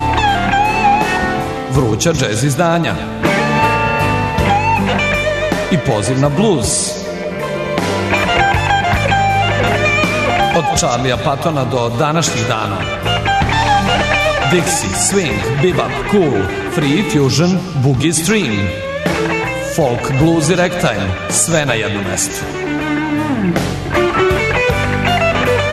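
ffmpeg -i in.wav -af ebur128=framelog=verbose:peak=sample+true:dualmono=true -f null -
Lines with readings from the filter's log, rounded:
Integrated loudness:
  I:         -11.2 LUFS
  Threshold: -21.2 LUFS
Loudness range:
  LRA:         1.9 LU
  Threshold: -31.3 LUFS
  LRA low:   -12.2 LUFS
  LRA high:  -10.4 LUFS
Sample peak:
  Peak:       -1.5 dBFS
True peak:
  Peak:       -1.5 dBFS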